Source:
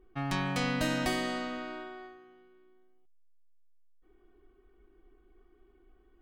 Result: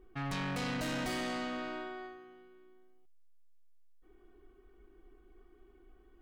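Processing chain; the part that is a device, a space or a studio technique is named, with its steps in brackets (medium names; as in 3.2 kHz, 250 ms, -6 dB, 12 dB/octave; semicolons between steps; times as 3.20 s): saturation between pre-emphasis and de-emphasis (treble shelf 9.6 kHz +11.5 dB; saturation -35 dBFS, distortion -7 dB; treble shelf 9.6 kHz -11.5 dB); trim +2 dB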